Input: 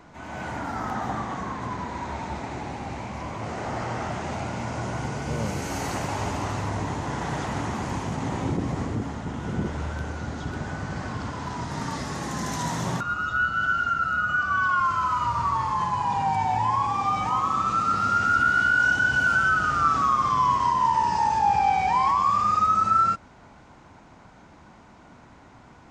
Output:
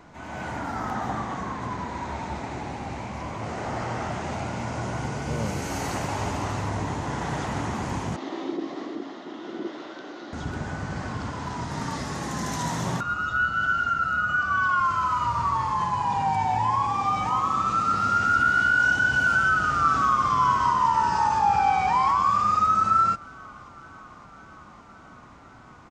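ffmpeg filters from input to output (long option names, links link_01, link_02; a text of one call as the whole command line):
ffmpeg -i in.wav -filter_complex "[0:a]asettb=1/sr,asplit=3[link_01][link_02][link_03];[link_01]atrim=end=8.164[link_04];[link_02]atrim=start=8.16:end=10.33,asetpts=PTS-STARTPTS,afade=type=in:duration=0.004:curve=qsin,afade=type=out:start_time=2.166:duration=0.004:curve=qsin,highpass=frequency=310:width=0.5412,highpass=frequency=310:width=1.3066,equalizer=frequency=330:width_type=q:width=4:gain=8,equalizer=frequency=480:width_type=q:width=4:gain=-7,equalizer=frequency=890:width_type=q:width=4:gain=-8,equalizer=frequency=1500:width_type=q:width=4:gain=-6,equalizer=frequency=2400:width_type=q:width=4:gain=-6,equalizer=frequency=3700:width_type=q:width=4:gain=4,lowpass=frequency=5000:width=0.5412,lowpass=frequency=5000:width=1.3066[link_05];[link_03]atrim=start=10.326[link_06];[link_04][link_05]acrossfade=duration=0.004:curve1=hsin:curve2=qsin[link_07];[link_07][link_06]acrossfade=duration=0.004:curve1=qsin:curve2=hsin,asplit=2[link_08][link_09];[link_09]afade=type=in:start_time=19.29:duration=0.01,afade=type=out:start_time=20.32:duration=0.01,aecho=0:1:560|1120|1680|2240|2800|3360|3920|4480|5040|5600|6160|6720:0.251189|0.188391|0.141294|0.10597|0.0794777|0.0596082|0.0447062|0.0335296|0.0251472|0.0188604|0.0141453|0.010609[link_10];[link_08][link_10]amix=inputs=2:normalize=0" out.wav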